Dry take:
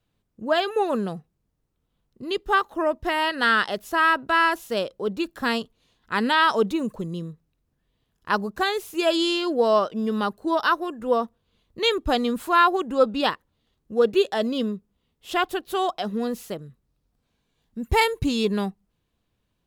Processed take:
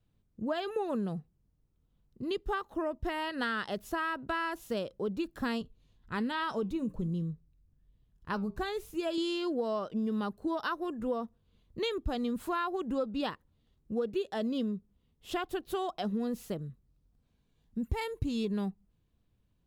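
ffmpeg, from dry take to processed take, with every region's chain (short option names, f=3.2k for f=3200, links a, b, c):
-filter_complex "[0:a]asettb=1/sr,asplit=3[a][b][c];[a]atrim=end=5.614[d];[b]atrim=start=5.61:end=9.18,asetpts=PTS-STARTPTS,afade=t=in:d=0.004:c=qsin,afade=t=out:st=3.566:d=0.004:c=qsin,lowshelf=f=130:g=11,flanger=delay=5.3:depth=3.3:regen=-82:speed=1.2:shape=sinusoidal[e];[c]atrim=start=9.176[f];[d][e]acrossfade=d=0.004:c1=hsin:c2=qsin[g];[g][f]acrossfade=d=0.004:c1=qsin:c2=hsin,lowshelf=f=290:g=11.5,acompressor=threshold=-22dB:ratio=6,volume=-7.5dB"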